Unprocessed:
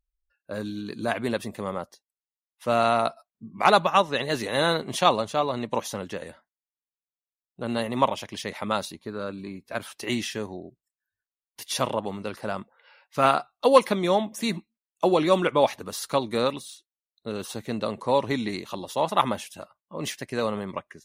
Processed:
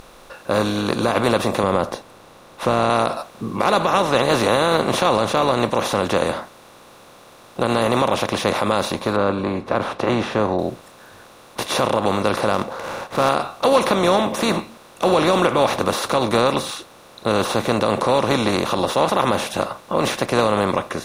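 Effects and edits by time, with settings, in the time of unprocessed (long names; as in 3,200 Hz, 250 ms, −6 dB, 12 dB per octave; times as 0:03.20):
0:01.63–0:02.90: spectral tilt −2.5 dB per octave
0:09.16–0:10.59: low-pass filter 1,300 Hz
0:12.53–0:13.29: running median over 15 samples
whole clip: compressor on every frequency bin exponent 0.4; low-shelf EQ 170 Hz +6.5 dB; brickwall limiter −5.5 dBFS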